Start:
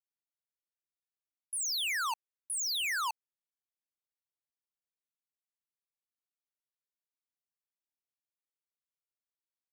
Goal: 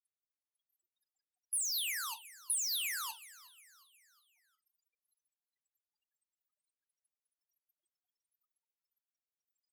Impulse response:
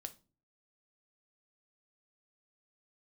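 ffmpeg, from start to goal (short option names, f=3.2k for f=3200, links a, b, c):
-filter_complex "[0:a]aeval=exprs='val(0)+0.5*0.00355*sgn(val(0))':c=same[a];[1:a]atrim=start_sample=2205,atrim=end_sample=3969,asetrate=48510,aresample=44100[b];[a][b]afir=irnorm=-1:irlink=0,afftfilt=real='re*gte(hypot(re,im),0.00112)':imag='im*gte(hypot(re,im),0.00112)':win_size=1024:overlap=0.75,asoftclip=type=tanh:threshold=-37.5dB,highpass=f=1.3k:p=1,equalizer=f=12k:t=o:w=0.59:g=11,asplit=5[c][d][e][f][g];[d]adelay=361,afreqshift=96,volume=-19dB[h];[e]adelay=722,afreqshift=192,volume=-24.4dB[i];[f]adelay=1083,afreqshift=288,volume=-29.7dB[j];[g]adelay=1444,afreqshift=384,volume=-35.1dB[k];[c][h][i][j][k]amix=inputs=5:normalize=0,adynamicequalizer=threshold=0.00158:dfrequency=2000:dqfactor=0.7:tfrequency=2000:tqfactor=0.7:attack=5:release=100:ratio=0.375:range=2:mode=boostabove:tftype=highshelf"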